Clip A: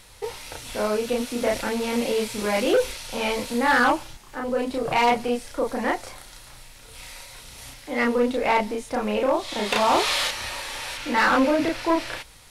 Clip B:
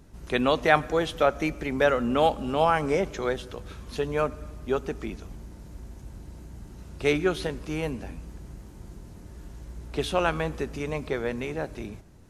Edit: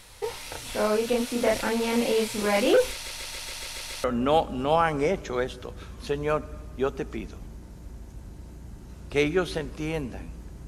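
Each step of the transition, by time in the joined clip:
clip A
2.92 s: stutter in place 0.14 s, 8 plays
4.04 s: go over to clip B from 1.93 s

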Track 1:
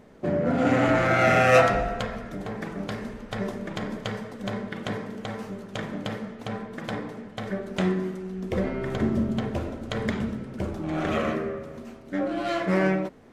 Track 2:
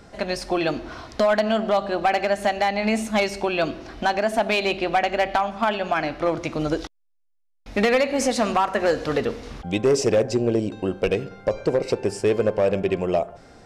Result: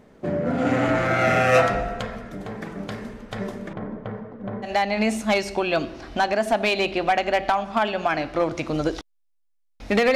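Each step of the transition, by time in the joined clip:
track 1
3.73–4.70 s: low-pass 1.2 kHz 12 dB/octave
4.66 s: go over to track 2 from 2.52 s, crossfade 0.08 s

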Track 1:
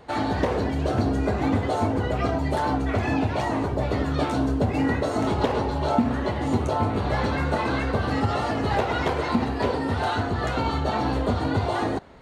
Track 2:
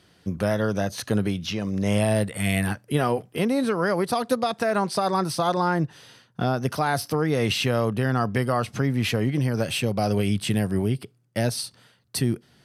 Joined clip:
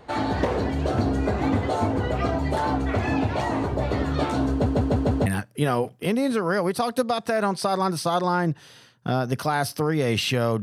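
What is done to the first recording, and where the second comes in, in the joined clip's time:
track 1
4.51 s: stutter in place 0.15 s, 5 plays
5.26 s: go over to track 2 from 2.59 s

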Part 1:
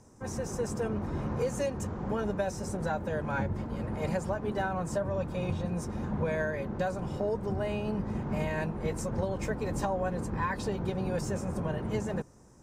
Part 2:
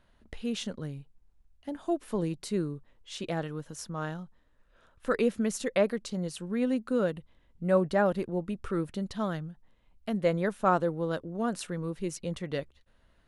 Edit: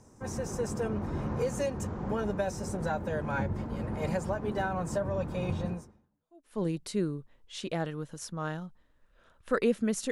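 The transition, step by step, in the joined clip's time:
part 1
6.16 s: go over to part 2 from 1.73 s, crossfade 0.90 s exponential

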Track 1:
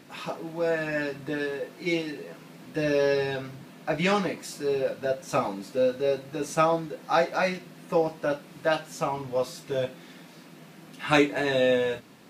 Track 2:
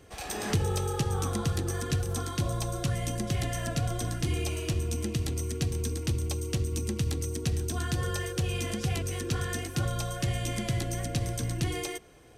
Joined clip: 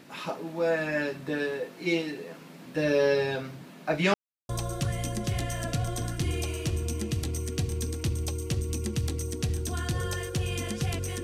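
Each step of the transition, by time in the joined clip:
track 1
4.14–4.49 s: mute
4.49 s: go over to track 2 from 2.52 s

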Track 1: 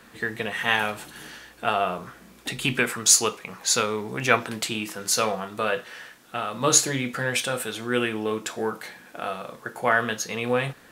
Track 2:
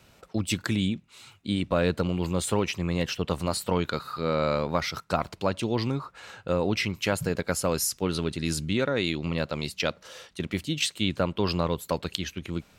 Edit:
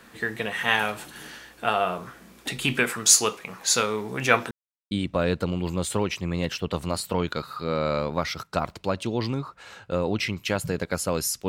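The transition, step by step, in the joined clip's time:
track 1
4.51–4.91 s: mute
4.91 s: go over to track 2 from 1.48 s

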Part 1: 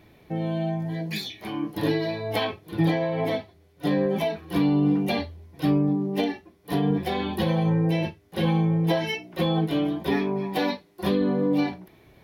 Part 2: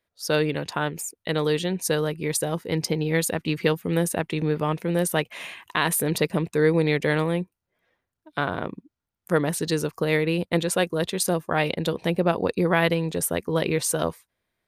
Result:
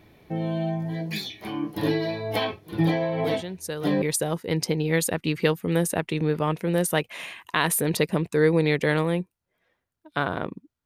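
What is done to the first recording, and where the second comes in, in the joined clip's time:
part 1
3.24 s: add part 2 from 1.45 s 0.78 s -8.5 dB
4.02 s: go over to part 2 from 2.23 s

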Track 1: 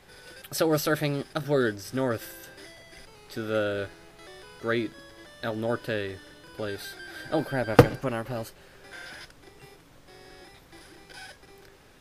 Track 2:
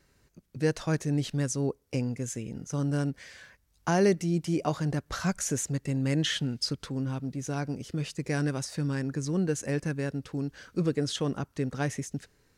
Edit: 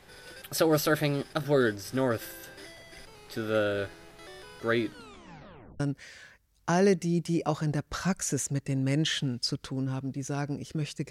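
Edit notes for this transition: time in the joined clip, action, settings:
track 1
4.85 s: tape stop 0.95 s
5.80 s: go over to track 2 from 2.99 s

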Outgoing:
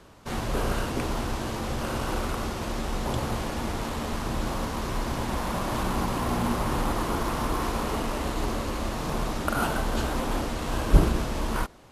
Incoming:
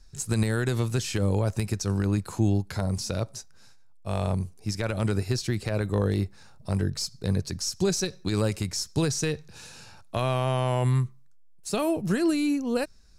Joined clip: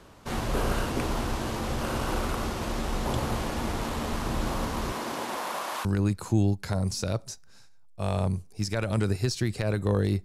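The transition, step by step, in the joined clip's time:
outgoing
4.91–5.85 s: high-pass 200 Hz -> 890 Hz
5.85 s: go over to incoming from 1.92 s

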